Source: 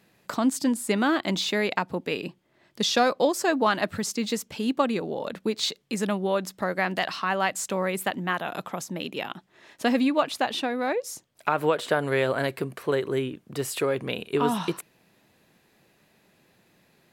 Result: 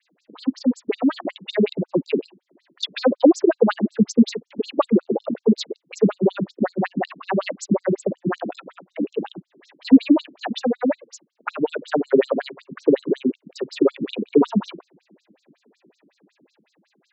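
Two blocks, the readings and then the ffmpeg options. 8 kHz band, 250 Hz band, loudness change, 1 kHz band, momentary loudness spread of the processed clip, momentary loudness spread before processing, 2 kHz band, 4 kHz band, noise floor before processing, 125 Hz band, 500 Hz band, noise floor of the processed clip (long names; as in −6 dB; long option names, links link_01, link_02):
−7.0 dB, +8.5 dB, +5.0 dB, −3.0 dB, 14 LU, 10 LU, −5.5 dB, −3.5 dB, −64 dBFS, +4.5 dB, +5.0 dB, −71 dBFS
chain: -filter_complex "[0:a]adynamicequalizer=threshold=0.00708:dfrequency=5400:dqfactor=1.4:tfrequency=5400:tqfactor=1.4:attack=5:release=100:ratio=0.375:range=2:mode=cutabove:tftype=bell,acrossover=split=540|4100[link_01][link_02][link_03];[link_01]dynaudnorm=framelen=180:gausssize=13:maxgain=13dB[link_04];[link_04][link_02][link_03]amix=inputs=3:normalize=0,afftfilt=real='re*between(b*sr/1024,230*pow(5800/230,0.5+0.5*sin(2*PI*5.4*pts/sr))/1.41,230*pow(5800/230,0.5+0.5*sin(2*PI*5.4*pts/sr))*1.41)':imag='im*between(b*sr/1024,230*pow(5800/230,0.5+0.5*sin(2*PI*5.4*pts/sr))/1.41,230*pow(5800/230,0.5+0.5*sin(2*PI*5.4*pts/sr))*1.41)':win_size=1024:overlap=0.75,volume=5dB"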